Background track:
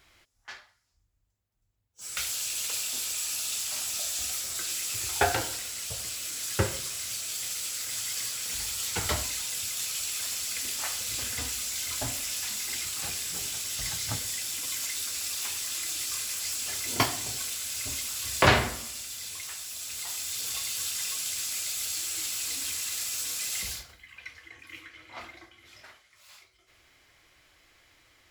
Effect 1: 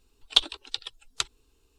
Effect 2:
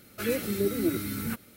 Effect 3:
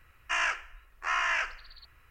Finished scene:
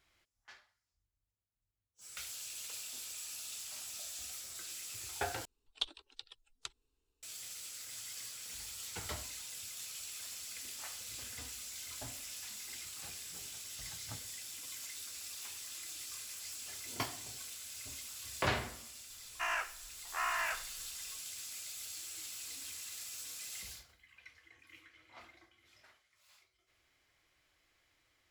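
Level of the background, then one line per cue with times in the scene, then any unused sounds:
background track -13 dB
5.45 replace with 1 -16.5 dB
19.1 add 3 -9.5 dB + bell 740 Hz +7.5 dB 1.4 oct
not used: 2

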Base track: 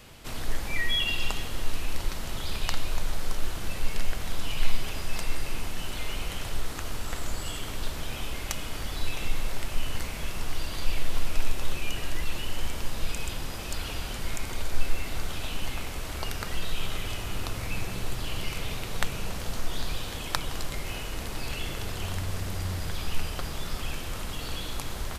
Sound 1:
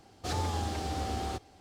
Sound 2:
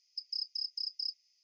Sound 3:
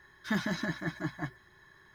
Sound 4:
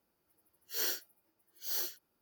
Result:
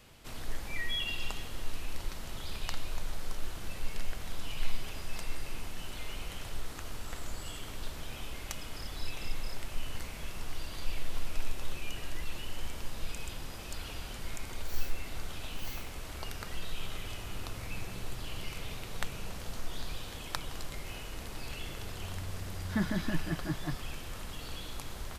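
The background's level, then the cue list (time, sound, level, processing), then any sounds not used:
base track -7.5 dB
8.44 add 2 -15 dB
13.94 add 4 -13 dB
22.45 add 3 -3.5 dB + tilt -2 dB/oct
not used: 1

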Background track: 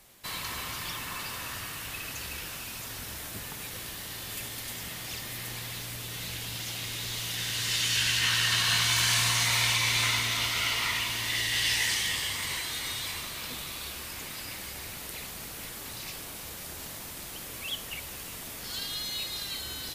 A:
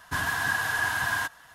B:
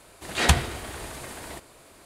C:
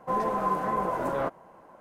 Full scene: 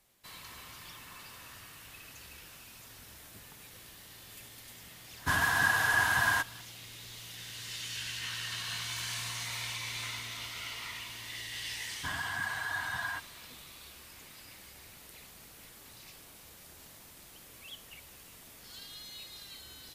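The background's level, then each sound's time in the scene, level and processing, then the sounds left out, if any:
background track -12.5 dB
5.15 add A, fades 0.10 s
11.92 add A -8.5 dB + spectral gate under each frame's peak -25 dB strong
not used: B, C

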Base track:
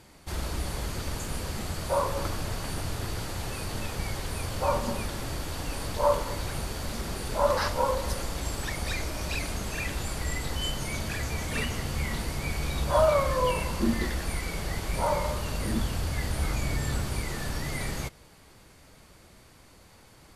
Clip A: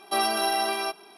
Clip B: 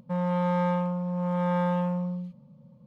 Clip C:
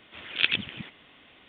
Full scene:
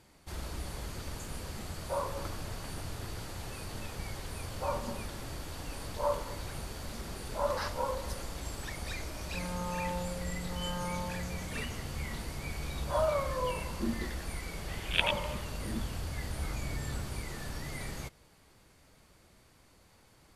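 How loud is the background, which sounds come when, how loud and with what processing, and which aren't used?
base track -7.5 dB
9.24 add B -14 dB + LFO low-pass saw down 0.8 Hz 340–2400 Hz
14.55 add C -5.5 dB
not used: A

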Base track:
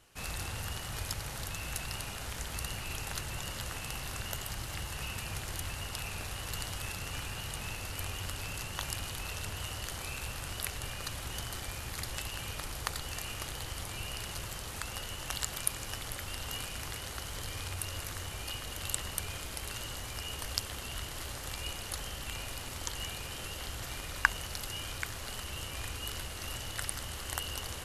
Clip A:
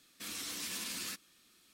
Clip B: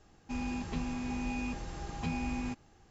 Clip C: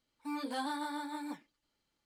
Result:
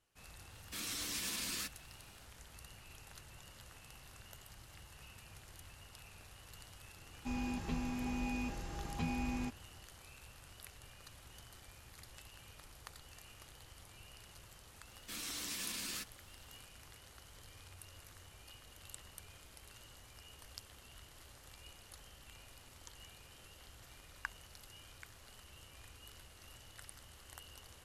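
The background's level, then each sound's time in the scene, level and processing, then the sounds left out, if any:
base track -17 dB
0.52 add A
6.96 add B -3 dB
14.88 add A -2 dB
not used: C

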